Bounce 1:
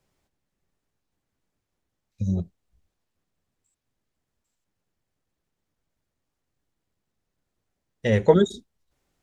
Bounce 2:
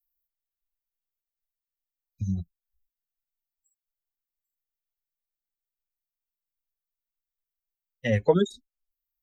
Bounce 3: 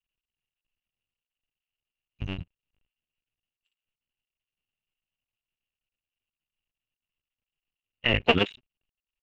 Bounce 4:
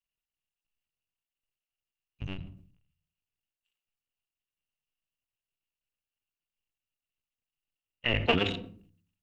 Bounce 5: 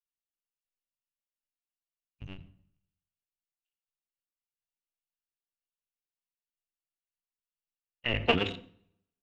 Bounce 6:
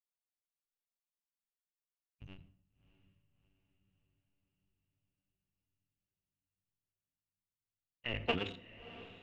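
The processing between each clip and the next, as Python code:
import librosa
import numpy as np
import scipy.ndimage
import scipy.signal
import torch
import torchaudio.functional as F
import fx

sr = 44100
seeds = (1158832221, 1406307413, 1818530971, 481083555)

y1 = fx.bin_expand(x, sr, power=2.0)
y1 = fx.band_squash(y1, sr, depth_pct=40)
y2 = fx.cycle_switch(y1, sr, every=2, mode='muted')
y2 = fx.lowpass_res(y2, sr, hz=2800.0, q=14.0)
y3 = fx.room_shoebox(y2, sr, seeds[0], volume_m3=570.0, walls='furnished', distance_m=0.35)
y3 = fx.sustainer(y3, sr, db_per_s=82.0)
y3 = F.gain(torch.from_numpy(y3), -5.0).numpy()
y4 = fx.rev_plate(y3, sr, seeds[1], rt60_s=0.88, hf_ratio=0.8, predelay_ms=75, drr_db=18.0)
y4 = fx.upward_expand(y4, sr, threshold_db=-48.0, expansion=1.5)
y4 = F.gain(torch.from_numpy(y4), 1.0).numpy()
y5 = fx.echo_diffused(y4, sr, ms=660, feedback_pct=56, wet_db=-15.5)
y5 = F.gain(torch.from_numpy(y5), -8.5).numpy()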